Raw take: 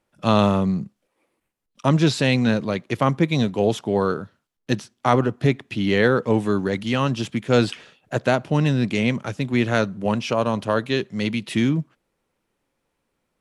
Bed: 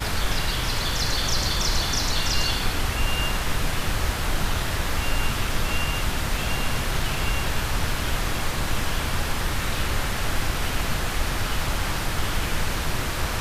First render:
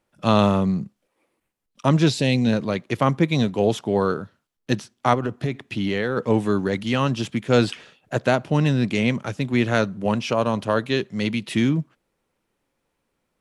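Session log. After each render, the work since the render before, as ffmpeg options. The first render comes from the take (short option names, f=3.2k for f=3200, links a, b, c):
-filter_complex "[0:a]asettb=1/sr,asplit=3[a][b][c];[a]atrim=end=2.104[d];[b]atrim=start=2.1:end=2.53,asetpts=PTS-STARTPTS,afade=t=in:d=0.004:c=qsin,afade=t=out:st=0.426:d=0.004:c=qsin,equalizer=f=1.3k:w=1.6:g=-14.5[e];[c]atrim=start=2.526[f];[d][e]acrossfade=d=0.004:c1=hsin:c2=qsin[g];[g][f]acrossfade=d=0.004:c1=qsin:c2=hsin,asplit=3[h][i][j];[h]afade=t=out:st=5.13:d=0.02[k];[i]acompressor=threshold=-19dB:ratio=6:attack=3.2:release=140:knee=1:detection=peak,afade=t=in:st=5.13:d=0.02,afade=t=out:st=6.16:d=0.02[l];[j]afade=t=in:st=6.16:d=0.02[m];[k][l][m]amix=inputs=3:normalize=0"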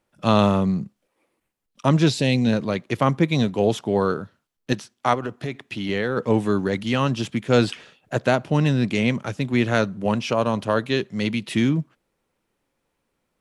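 -filter_complex "[0:a]asettb=1/sr,asplit=3[a][b][c];[a]atrim=end=4.734[d];[b]atrim=start=4.73:end=5.89,asetpts=PTS-STARTPTS,afade=t=in:d=0.004:c=qsin,afade=t=out:st=1.156:d=0.004:c=qsin,lowshelf=f=330:g=-6.5[e];[c]atrim=start=5.886[f];[d][e]acrossfade=d=0.004:c1=hsin:c2=qsin[g];[g][f]acrossfade=d=0.004:c1=qsin:c2=hsin"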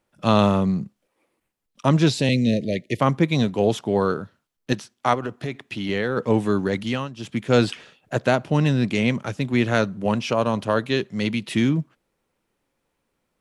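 -filter_complex "[0:a]asettb=1/sr,asplit=3[a][b][c];[a]atrim=end=2.294[d];[b]atrim=start=2.29:end=3,asetpts=PTS-STARTPTS,afade=t=in:d=0.004:c=qsin,afade=t=out:st=0.706:d=0.004:c=qsin,asuperstop=centerf=1100:order=20:qfactor=1[e];[c]atrim=start=2.996[f];[d][e]acrossfade=d=0.004:c1=hsin:c2=qsin[g];[g][f]acrossfade=d=0.004:c1=qsin:c2=hsin,asplit=3[h][i][j];[h]atrim=end=7.1,asetpts=PTS-STARTPTS,afade=t=out:st=6.85:d=0.25:silence=0.16788[k];[i]atrim=start=7.1:end=7.14,asetpts=PTS-STARTPTS,volume=-15.5dB[l];[j]atrim=start=7.14,asetpts=PTS-STARTPTS,afade=t=in:d=0.25:silence=0.16788[m];[k][l][m]concat=n=3:v=0:a=1"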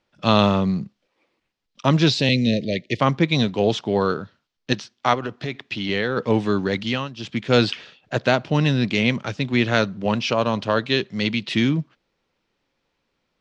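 -af "lowpass=f=5k:w=0.5412,lowpass=f=5k:w=1.3066,highshelf=f=3.2k:g=11.5"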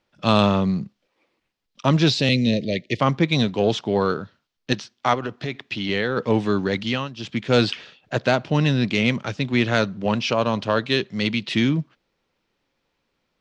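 -af "asoftclip=type=tanh:threshold=-3.5dB"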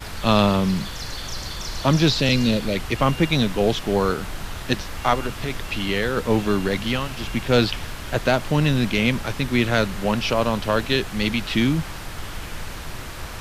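-filter_complex "[1:a]volume=-7.5dB[a];[0:a][a]amix=inputs=2:normalize=0"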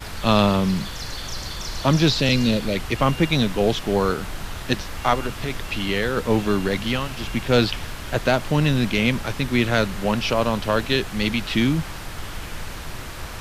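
-af anull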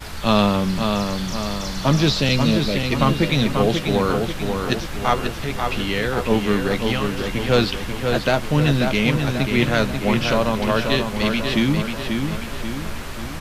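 -filter_complex "[0:a]asplit=2[a][b];[b]adelay=14,volume=-11.5dB[c];[a][c]amix=inputs=2:normalize=0,asplit=2[d][e];[e]adelay=538,lowpass=f=4.7k:p=1,volume=-5dB,asplit=2[f][g];[g]adelay=538,lowpass=f=4.7k:p=1,volume=0.52,asplit=2[h][i];[i]adelay=538,lowpass=f=4.7k:p=1,volume=0.52,asplit=2[j][k];[k]adelay=538,lowpass=f=4.7k:p=1,volume=0.52,asplit=2[l][m];[m]adelay=538,lowpass=f=4.7k:p=1,volume=0.52,asplit=2[n][o];[o]adelay=538,lowpass=f=4.7k:p=1,volume=0.52,asplit=2[p][q];[q]adelay=538,lowpass=f=4.7k:p=1,volume=0.52[r];[d][f][h][j][l][n][p][r]amix=inputs=8:normalize=0"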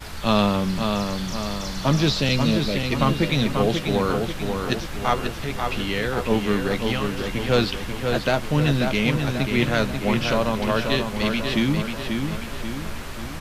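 -af "volume=-2.5dB"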